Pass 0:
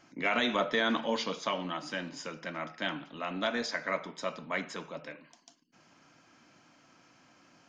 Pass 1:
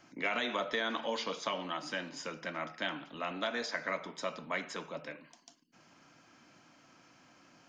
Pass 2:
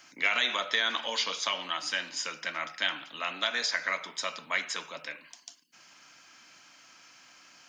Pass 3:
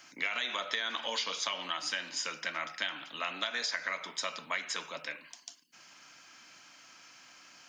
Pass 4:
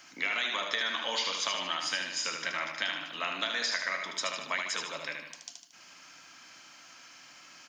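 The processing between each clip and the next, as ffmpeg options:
-filter_complex "[0:a]acrossover=split=330|2800[a][b][c];[a]acompressor=threshold=-48dB:ratio=4[d];[b]acompressor=threshold=-32dB:ratio=4[e];[c]acompressor=threshold=-40dB:ratio=4[f];[d][e][f]amix=inputs=3:normalize=0"
-af "tiltshelf=f=970:g=-10,volume=2dB"
-af "acompressor=threshold=-30dB:ratio=5"
-af "aecho=1:1:76|152|228|304|380|456:0.562|0.264|0.124|0.0584|0.0274|0.0129,volume=1.5dB"

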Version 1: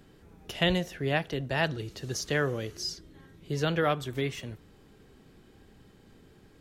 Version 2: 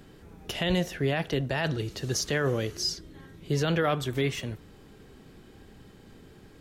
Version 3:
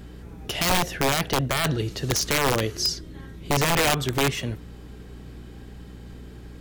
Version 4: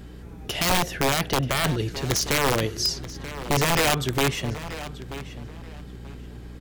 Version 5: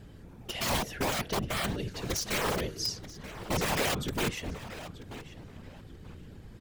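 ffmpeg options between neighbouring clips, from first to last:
-af "alimiter=limit=-22dB:level=0:latency=1:release=11,volume=5dB"
-af "aeval=exprs='(mod(9.44*val(0)+1,2)-1)/9.44':c=same,aeval=exprs='val(0)+0.00501*(sin(2*PI*60*n/s)+sin(2*PI*2*60*n/s)/2+sin(2*PI*3*60*n/s)/3+sin(2*PI*4*60*n/s)/4+sin(2*PI*5*60*n/s)/5)':c=same,volume=5dB"
-filter_complex "[0:a]asplit=2[a][b];[b]adelay=933,lowpass=f=4.9k:p=1,volume=-13.5dB,asplit=2[c][d];[d]adelay=933,lowpass=f=4.9k:p=1,volume=0.24,asplit=2[e][f];[f]adelay=933,lowpass=f=4.9k:p=1,volume=0.24[g];[a][c][e][g]amix=inputs=4:normalize=0"
-af "afftfilt=real='hypot(re,im)*cos(2*PI*random(0))':imag='hypot(re,im)*sin(2*PI*random(1))':win_size=512:overlap=0.75,volume=-2dB"

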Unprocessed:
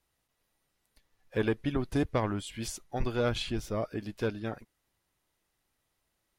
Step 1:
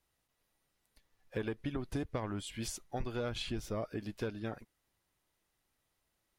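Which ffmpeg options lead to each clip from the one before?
-af "acompressor=threshold=-31dB:ratio=6,volume=-2dB"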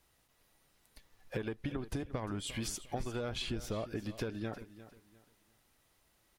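-af "acompressor=threshold=-45dB:ratio=4,aecho=1:1:352|704|1056:0.178|0.0498|0.0139,volume=9dB"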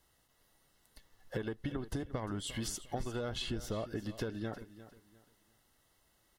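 -af "asuperstop=centerf=2400:order=12:qfactor=7.5"

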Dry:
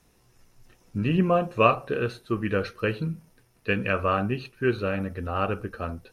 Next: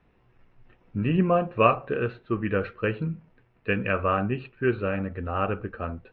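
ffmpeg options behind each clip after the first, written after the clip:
-af "lowpass=f=2.8k:w=0.5412,lowpass=f=2.8k:w=1.3066"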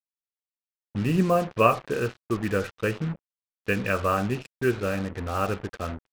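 -af "acrusher=bits=5:mix=0:aa=0.5"

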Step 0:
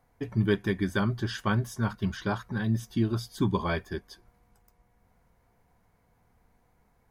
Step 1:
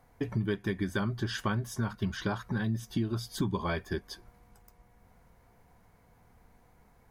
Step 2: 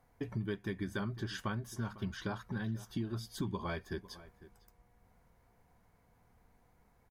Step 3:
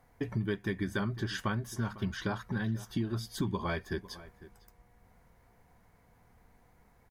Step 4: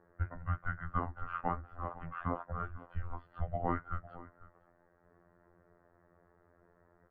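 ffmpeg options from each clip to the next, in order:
-af "acompressor=threshold=-34dB:ratio=4,volume=5dB"
-filter_complex "[0:a]asplit=2[a][b];[b]adelay=501.5,volume=-17dB,highshelf=f=4k:g=-11.3[c];[a][c]amix=inputs=2:normalize=0,volume=-6.5dB"
-af "equalizer=f=1.9k:t=o:w=0.36:g=3,volume=4.5dB"
-af "afftfilt=real='hypot(re,im)*cos(PI*b)':imag='0':win_size=2048:overlap=0.75,highpass=f=270:t=q:w=0.5412,highpass=f=270:t=q:w=1.307,lowpass=f=2.1k:t=q:w=0.5176,lowpass=f=2.1k:t=q:w=0.7071,lowpass=f=2.1k:t=q:w=1.932,afreqshift=-340,volume=5.5dB"

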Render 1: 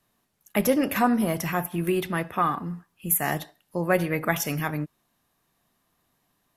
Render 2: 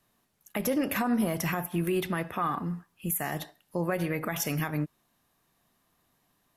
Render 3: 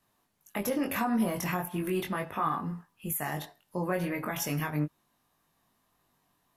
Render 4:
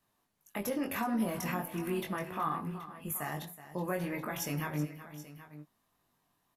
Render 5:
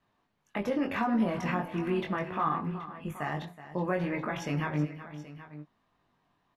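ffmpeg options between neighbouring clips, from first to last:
-af "alimiter=limit=-19dB:level=0:latency=1:release=113"
-af "equalizer=f=950:t=o:w=0.55:g=4,flanger=delay=19:depth=3.2:speed=0.37,volume=1dB"
-af "aecho=1:1:373|777:0.2|0.168,volume=-4dB"
-af "lowpass=3.3k,volume=4.5dB"

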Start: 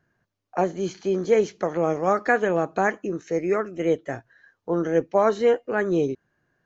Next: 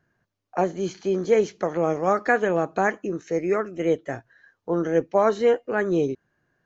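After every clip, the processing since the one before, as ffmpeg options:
-af anull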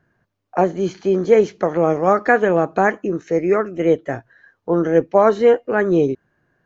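-af "highshelf=f=3.7k:g=-9,volume=6.5dB"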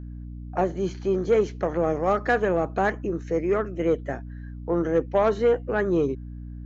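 -af "aeval=exprs='0.891*(cos(1*acos(clip(val(0)/0.891,-1,1)))-cos(1*PI/2))+0.0631*(cos(5*acos(clip(val(0)/0.891,-1,1)))-cos(5*PI/2))':c=same,aeval=exprs='val(0)+0.0447*(sin(2*PI*60*n/s)+sin(2*PI*2*60*n/s)/2+sin(2*PI*3*60*n/s)/3+sin(2*PI*4*60*n/s)/4+sin(2*PI*5*60*n/s)/5)':c=same,volume=-8.5dB"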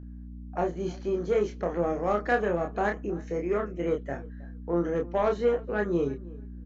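-filter_complex "[0:a]asplit=2[a][b];[b]adelay=29,volume=-4dB[c];[a][c]amix=inputs=2:normalize=0,asplit=2[d][e];[e]adelay=317,lowpass=f=2.1k:p=1,volume=-21.5dB,asplit=2[f][g];[g]adelay=317,lowpass=f=2.1k:p=1,volume=0.16[h];[d][f][h]amix=inputs=3:normalize=0,volume=-5.5dB"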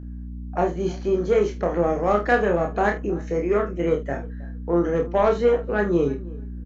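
-filter_complex "[0:a]asplit=2[a][b];[b]adelay=49,volume=-11.5dB[c];[a][c]amix=inputs=2:normalize=0,volume=6dB"

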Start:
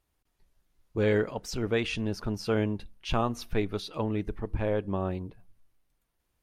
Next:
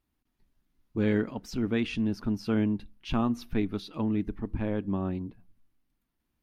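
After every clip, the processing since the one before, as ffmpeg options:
-af "equalizer=f=250:t=o:w=1:g=11,equalizer=f=500:t=o:w=1:g=-6,equalizer=f=8k:t=o:w=1:g=-6,volume=-3dB"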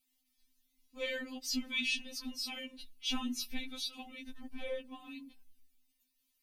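-af "aexciter=amount=6.7:drive=4:freq=2.1k,afftfilt=real='re*3.46*eq(mod(b,12),0)':imag='im*3.46*eq(mod(b,12),0)':win_size=2048:overlap=0.75,volume=-7dB"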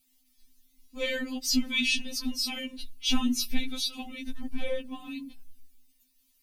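-af "bass=f=250:g=9,treble=f=4k:g=4,volume=6dB"

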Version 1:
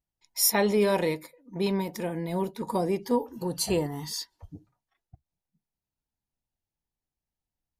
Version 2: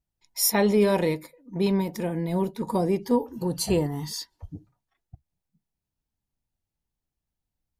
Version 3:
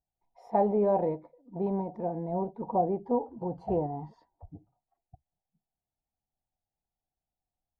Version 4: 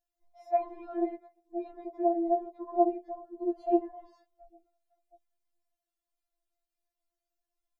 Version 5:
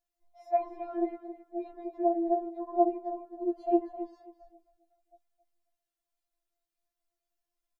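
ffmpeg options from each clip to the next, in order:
-af "lowshelf=f=320:g=6.5"
-af "lowpass=f=750:t=q:w=5.9,volume=-8.5dB"
-af "afftfilt=real='re*4*eq(mod(b,16),0)':imag='im*4*eq(mod(b,16),0)':win_size=2048:overlap=0.75,volume=3.5dB"
-af "aecho=1:1:269|538:0.224|0.0448"

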